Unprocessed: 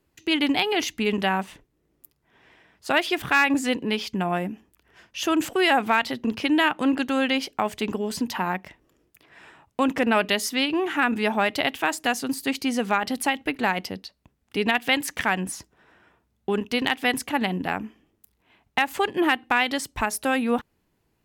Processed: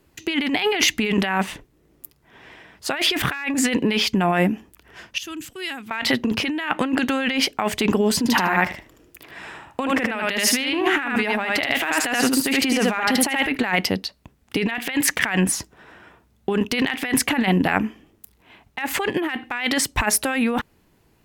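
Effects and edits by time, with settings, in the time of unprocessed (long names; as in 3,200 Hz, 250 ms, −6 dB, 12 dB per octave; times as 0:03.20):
0:05.18–0:05.91: guitar amp tone stack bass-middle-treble 6-0-2
0:08.18–0:13.52: repeating echo 77 ms, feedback 16%, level −4 dB
whole clip: dynamic equaliser 2,000 Hz, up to +7 dB, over −37 dBFS, Q 1.4; compressor whose output falls as the input rises −27 dBFS, ratio −1; level +5.5 dB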